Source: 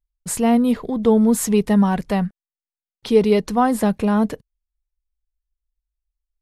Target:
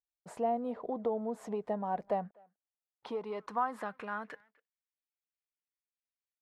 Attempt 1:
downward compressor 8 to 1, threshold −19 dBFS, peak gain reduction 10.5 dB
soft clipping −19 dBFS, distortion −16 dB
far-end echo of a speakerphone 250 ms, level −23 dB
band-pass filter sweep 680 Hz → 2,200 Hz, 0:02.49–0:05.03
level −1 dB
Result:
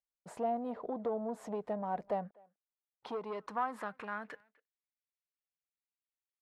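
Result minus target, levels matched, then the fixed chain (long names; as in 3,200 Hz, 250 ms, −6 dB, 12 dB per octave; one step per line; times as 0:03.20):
soft clipping: distortion +15 dB
downward compressor 8 to 1, threshold −19 dBFS, peak gain reduction 10.5 dB
soft clipping −9.5 dBFS, distortion −31 dB
far-end echo of a speakerphone 250 ms, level −23 dB
band-pass filter sweep 680 Hz → 2,200 Hz, 0:02.49–0:05.03
level −1 dB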